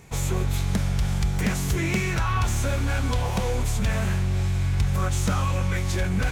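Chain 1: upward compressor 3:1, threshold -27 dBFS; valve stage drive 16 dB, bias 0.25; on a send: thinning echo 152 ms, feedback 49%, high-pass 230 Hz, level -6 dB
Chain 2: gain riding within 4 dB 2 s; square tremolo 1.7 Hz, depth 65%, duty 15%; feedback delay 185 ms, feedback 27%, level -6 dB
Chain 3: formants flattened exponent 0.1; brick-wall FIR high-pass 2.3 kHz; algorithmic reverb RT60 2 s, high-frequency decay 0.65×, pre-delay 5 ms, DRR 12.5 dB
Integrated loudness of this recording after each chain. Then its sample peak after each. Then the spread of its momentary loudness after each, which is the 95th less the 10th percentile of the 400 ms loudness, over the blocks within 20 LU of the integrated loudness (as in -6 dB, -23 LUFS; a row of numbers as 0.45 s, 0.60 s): -26.0 LUFS, -30.0 LUFS, -20.5 LUFS; -14.0 dBFS, -13.0 dBFS, -5.5 dBFS; 2 LU, 4 LU, 2 LU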